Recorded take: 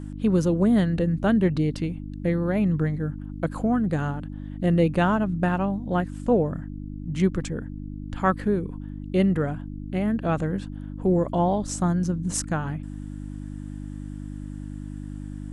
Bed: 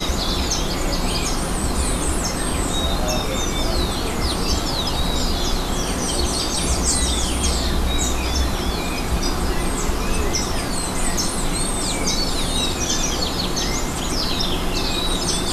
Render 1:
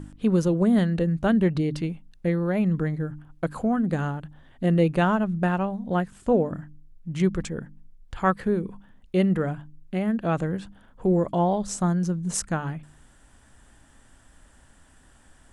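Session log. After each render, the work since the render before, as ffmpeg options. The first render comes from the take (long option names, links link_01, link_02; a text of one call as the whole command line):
ffmpeg -i in.wav -af "bandreject=frequency=50:width_type=h:width=4,bandreject=frequency=100:width_type=h:width=4,bandreject=frequency=150:width_type=h:width=4,bandreject=frequency=200:width_type=h:width=4,bandreject=frequency=250:width_type=h:width=4,bandreject=frequency=300:width_type=h:width=4" out.wav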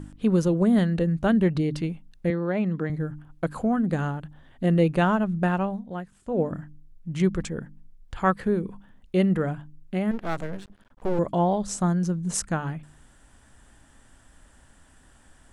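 ffmpeg -i in.wav -filter_complex "[0:a]asettb=1/sr,asplit=3[link_01][link_02][link_03];[link_01]atrim=end=2.304[link_04];[link_02]atrim=start=2.3:end=2.9,asetpts=PTS-STARTPTS,afade=type=in:duration=0.004:curve=qsin,afade=type=out:start_time=0.596:duration=0.004:curve=qsin,highpass=190,lowpass=5400[link_05];[link_03]atrim=start=2.896[link_06];[link_04][link_05]acrossfade=duration=0.004:curve1=hsin:curve2=qsin[link_07];[link_07][link_06]acrossfade=duration=0.004:curve1=qsin:curve2=hsin,asettb=1/sr,asplit=3[link_08][link_09][link_10];[link_08]atrim=end=10.114[link_11];[link_09]atrim=start=10.11:end=11.19,asetpts=PTS-STARTPTS,afade=type=in:duration=0.004:curve=qsin,afade=type=out:start_time=1.076:duration=0.004:curve=qsin,aeval=exprs='max(val(0),0)':channel_layout=same[link_12];[link_10]atrim=start=11.186[link_13];[link_11][link_12]acrossfade=duration=0.004:curve1=hsin:curve2=qsin[link_14];[link_14][link_13]acrossfade=duration=0.004:curve1=qsin:curve2=hsin,asplit=3[link_15][link_16][link_17];[link_15]atrim=end=6.04,asetpts=PTS-STARTPTS,afade=type=out:start_time=5.79:duration=0.25:curve=exp:silence=0.334965[link_18];[link_16]atrim=start=6.04:end=6.14,asetpts=PTS-STARTPTS,volume=-9.5dB[link_19];[link_17]atrim=start=6.14,asetpts=PTS-STARTPTS,afade=type=in:duration=0.25:curve=exp:silence=0.334965[link_20];[link_18][link_19][link_20]concat=n=3:v=0:a=1" out.wav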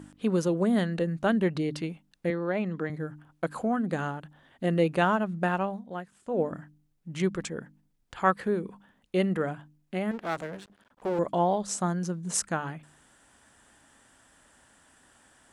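ffmpeg -i in.wav -af "highpass=frequency=340:poles=1" out.wav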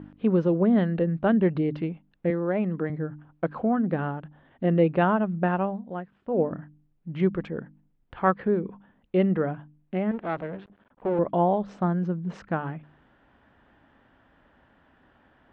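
ffmpeg -i in.wav -af "lowpass=frequency=3200:width=0.5412,lowpass=frequency=3200:width=1.3066,tiltshelf=frequency=1200:gain=4.5" out.wav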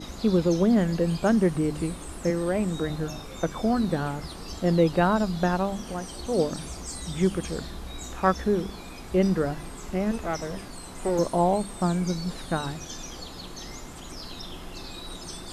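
ffmpeg -i in.wav -i bed.wav -filter_complex "[1:a]volume=-17.5dB[link_01];[0:a][link_01]amix=inputs=2:normalize=0" out.wav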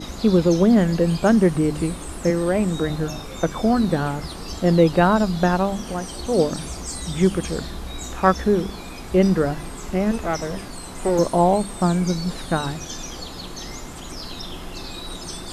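ffmpeg -i in.wav -af "volume=5.5dB" out.wav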